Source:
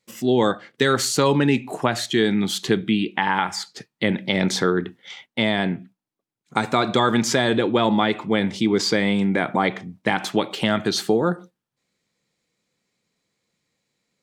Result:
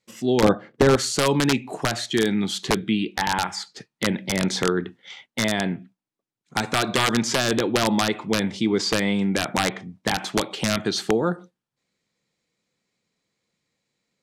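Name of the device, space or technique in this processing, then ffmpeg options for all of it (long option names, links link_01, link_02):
overflowing digital effects unit: -filter_complex "[0:a]aeval=exprs='(mod(2.66*val(0)+1,2)-1)/2.66':channel_layout=same,lowpass=9500,asettb=1/sr,asplit=3[link_01][link_02][link_03];[link_01]atrim=end=0.434[link_04];[link_02]atrim=start=0.43:end=0.96,asetpts=PTS-STARTPTS,afade=type=in:duration=0.004:curve=qsin,afade=type=out:start_time=0.526:duration=0.004:curve=qsin,tiltshelf=frequency=1400:gain=9[link_05];[link_03]atrim=start=0.956[link_06];[link_04][link_05]acrossfade=duration=0.004:curve1=hsin:curve2=qsin[link_07];[link_07][link_06]acrossfade=duration=0.004:curve1=qsin:curve2=hsin,volume=-2dB"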